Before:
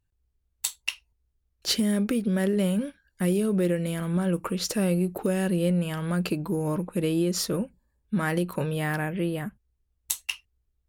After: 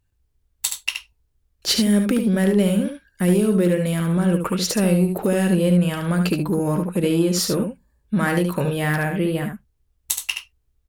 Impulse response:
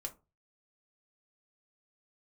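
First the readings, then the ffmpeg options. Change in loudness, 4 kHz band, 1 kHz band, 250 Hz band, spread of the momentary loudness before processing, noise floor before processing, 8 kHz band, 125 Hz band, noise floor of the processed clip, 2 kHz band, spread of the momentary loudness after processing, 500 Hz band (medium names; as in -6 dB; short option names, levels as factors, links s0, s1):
+6.5 dB, +6.5 dB, +6.5 dB, +6.5 dB, 9 LU, -76 dBFS, +6.5 dB, +7.0 dB, -69 dBFS, +6.5 dB, 9 LU, +6.5 dB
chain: -filter_complex "[0:a]asplit=2[s0][s1];[s1]asoftclip=type=tanh:threshold=0.0531,volume=0.316[s2];[s0][s2]amix=inputs=2:normalize=0,aecho=1:1:73:0.501,volume=1.58"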